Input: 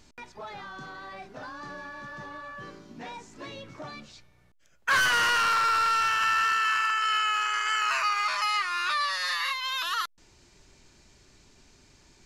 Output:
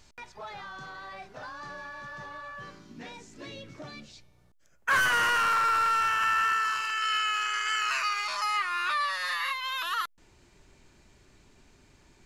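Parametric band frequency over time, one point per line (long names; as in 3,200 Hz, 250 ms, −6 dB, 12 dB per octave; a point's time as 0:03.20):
parametric band −8 dB 1.1 octaves
0:02.59 270 Hz
0:03.11 1,000 Hz
0:03.99 1,000 Hz
0:04.92 4,400 Hz
0:06.53 4,400 Hz
0:07.02 800 Hz
0:08.14 800 Hz
0:08.60 5,400 Hz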